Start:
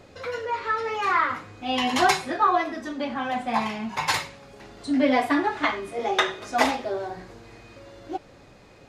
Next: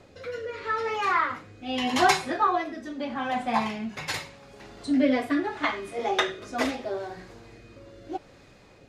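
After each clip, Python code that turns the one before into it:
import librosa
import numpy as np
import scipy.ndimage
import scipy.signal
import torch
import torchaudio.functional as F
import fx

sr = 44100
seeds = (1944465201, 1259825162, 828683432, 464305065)

y = fx.rotary(x, sr, hz=0.8)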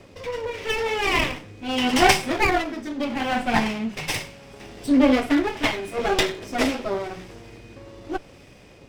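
y = fx.lower_of_two(x, sr, delay_ms=0.36)
y = F.gain(torch.from_numpy(y), 6.0).numpy()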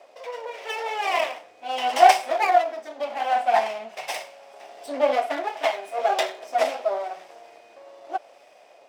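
y = fx.highpass_res(x, sr, hz=670.0, q=5.6)
y = F.gain(torch.from_numpy(y), -6.0).numpy()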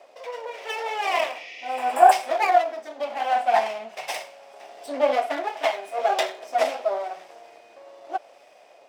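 y = fx.spec_repair(x, sr, seeds[0], start_s=1.37, length_s=0.73, low_hz=1800.0, high_hz=7000.0, source='before')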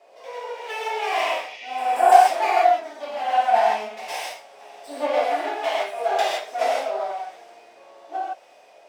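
y = fx.rev_gated(x, sr, seeds[1], gate_ms=190, shape='flat', drr_db=-7.5)
y = F.gain(torch.from_numpy(y), -7.0).numpy()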